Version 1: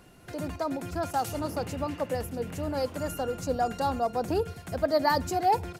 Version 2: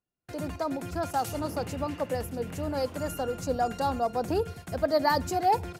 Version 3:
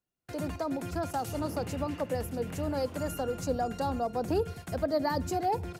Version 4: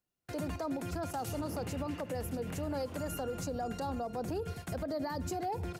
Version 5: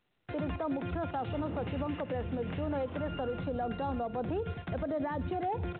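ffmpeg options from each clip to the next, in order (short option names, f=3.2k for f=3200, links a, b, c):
-af "agate=range=-37dB:threshold=-44dB:ratio=16:detection=peak"
-filter_complex "[0:a]acrossover=split=490[a][b];[b]acompressor=threshold=-36dB:ratio=2[c];[a][c]amix=inputs=2:normalize=0"
-af "alimiter=level_in=4.5dB:limit=-24dB:level=0:latency=1:release=70,volume=-4.5dB"
-af "volume=2.5dB" -ar 8000 -c:a pcm_mulaw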